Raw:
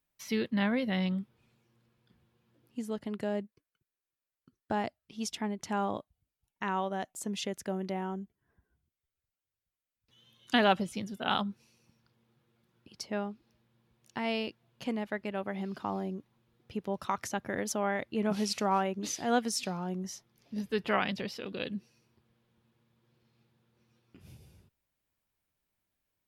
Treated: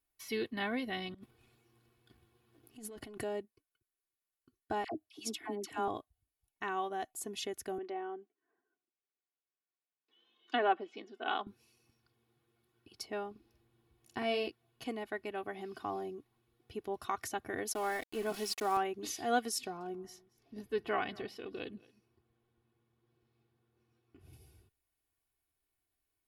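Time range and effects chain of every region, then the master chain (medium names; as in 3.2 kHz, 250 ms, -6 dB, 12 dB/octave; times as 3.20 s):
1.14–3.23 s: waveshaping leveller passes 1 + compressor with a negative ratio -41 dBFS
4.84–5.88 s: high-pass 100 Hz + peaking EQ 310 Hz +14 dB 0.33 oct + phase dispersion lows, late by 85 ms, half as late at 990 Hz
7.78–11.47 s: low-pass that closes with the level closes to 2 kHz, closed at -21.5 dBFS + high-pass 270 Hz 24 dB/octave + distance through air 210 m
13.31–14.48 s: bass shelf 410 Hz +5.5 dB + doubling 47 ms -7 dB
17.73–18.77 s: high-pass 140 Hz 24 dB/octave + bass shelf 200 Hz -3.5 dB + small samples zeroed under -40.5 dBFS
19.58–24.33 s: treble shelf 2.2 kHz -8.5 dB + delay 226 ms -23 dB
whole clip: peaking EQ 11 kHz +9 dB 0.25 oct; band-stop 6 kHz, Q 23; comb 2.7 ms, depth 72%; trim -5 dB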